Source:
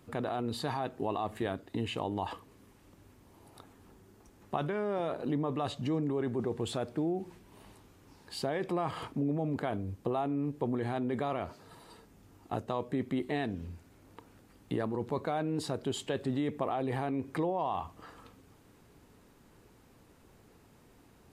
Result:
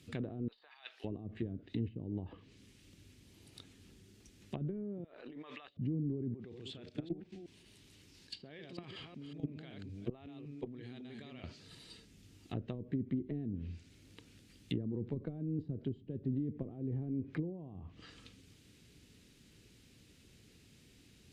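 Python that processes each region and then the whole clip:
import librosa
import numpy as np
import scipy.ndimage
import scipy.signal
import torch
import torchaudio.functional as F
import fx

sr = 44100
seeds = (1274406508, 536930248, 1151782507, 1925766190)

y = fx.chain(x, sr, fx.highpass(hz=860.0, slope=24),
    fx.peak_eq(hz=7500.0, db=-10.5, octaves=0.69),
    fx.over_compress(threshold_db=-47.0, ratio=-1.0), at=(0.48, 1.04))
y = fx.chain(y, sr, fx.highpass(hz=1400.0, slope=12),
    fx.env_flatten(amount_pct=100), at=(5.04, 5.77))
y = fx.chain(y, sr, fx.reverse_delay(ms=187, wet_db=-3),
    fx.low_shelf(hz=230.0, db=-4.0),
    fx.level_steps(step_db=15), at=(6.34, 11.44))
y = fx.weighting(y, sr, curve='D')
y = fx.env_lowpass_down(y, sr, base_hz=320.0, full_db=-29.0)
y = fx.tone_stack(y, sr, knobs='10-0-1')
y = F.gain(torch.from_numpy(y), 17.5).numpy()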